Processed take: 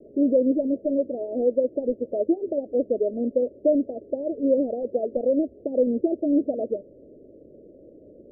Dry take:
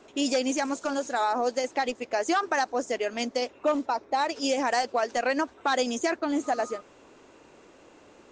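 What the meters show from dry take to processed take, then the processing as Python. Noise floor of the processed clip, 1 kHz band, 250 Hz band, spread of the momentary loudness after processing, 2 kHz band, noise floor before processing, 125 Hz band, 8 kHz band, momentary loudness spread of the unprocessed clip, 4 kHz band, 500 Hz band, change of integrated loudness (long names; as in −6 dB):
−50 dBFS, −17.5 dB, +7.0 dB, 6 LU, below −40 dB, −55 dBFS, can't be measured, below −40 dB, 4 LU, below −40 dB, +6.0 dB, +3.0 dB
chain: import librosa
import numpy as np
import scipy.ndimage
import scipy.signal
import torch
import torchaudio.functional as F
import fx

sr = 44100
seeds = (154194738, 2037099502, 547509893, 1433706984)

y = scipy.signal.sosfilt(scipy.signal.butter(16, 620.0, 'lowpass', fs=sr, output='sos'), x)
y = F.gain(torch.from_numpy(y), 7.0).numpy()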